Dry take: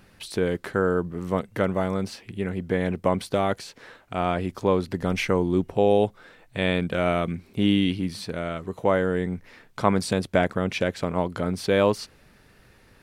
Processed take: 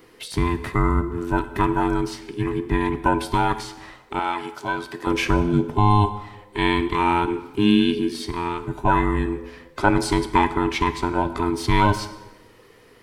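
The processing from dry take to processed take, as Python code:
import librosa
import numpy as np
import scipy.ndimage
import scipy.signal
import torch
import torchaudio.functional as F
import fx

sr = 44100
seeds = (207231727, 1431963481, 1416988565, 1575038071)

y = fx.band_invert(x, sr, width_hz=500)
y = fx.highpass(y, sr, hz=930.0, slope=6, at=(4.19, 5.07))
y = fx.rev_plate(y, sr, seeds[0], rt60_s=1.1, hf_ratio=0.85, predelay_ms=0, drr_db=10.0)
y = F.gain(torch.from_numpy(y), 3.0).numpy()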